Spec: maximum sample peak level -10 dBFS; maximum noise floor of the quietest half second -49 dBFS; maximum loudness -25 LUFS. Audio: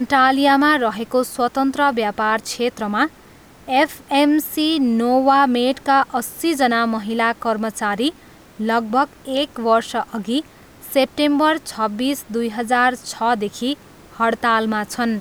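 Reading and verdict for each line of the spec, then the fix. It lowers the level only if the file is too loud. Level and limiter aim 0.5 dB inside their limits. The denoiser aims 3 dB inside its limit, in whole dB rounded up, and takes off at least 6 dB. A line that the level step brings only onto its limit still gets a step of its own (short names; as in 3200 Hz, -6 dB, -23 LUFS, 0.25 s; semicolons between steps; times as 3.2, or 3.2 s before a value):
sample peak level -5.0 dBFS: fail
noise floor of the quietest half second -45 dBFS: fail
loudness -19.0 LUFS: fail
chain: gain -6.5 dB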